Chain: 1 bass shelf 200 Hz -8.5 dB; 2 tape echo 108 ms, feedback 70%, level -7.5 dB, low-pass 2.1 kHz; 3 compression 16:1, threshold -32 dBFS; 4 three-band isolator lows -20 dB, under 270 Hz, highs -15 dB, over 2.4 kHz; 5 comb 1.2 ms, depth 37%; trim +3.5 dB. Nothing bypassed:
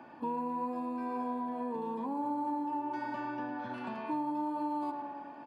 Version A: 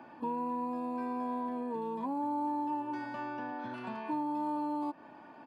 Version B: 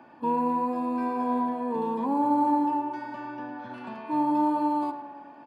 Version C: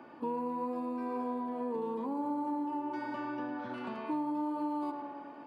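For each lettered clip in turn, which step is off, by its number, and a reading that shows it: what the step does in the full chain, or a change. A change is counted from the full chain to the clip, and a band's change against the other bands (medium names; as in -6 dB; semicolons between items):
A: 2, momentary loudness spread change +2 LU; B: 3, mean gain reduction 6.0 dB; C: 5, 500 Hz band +3.5 dB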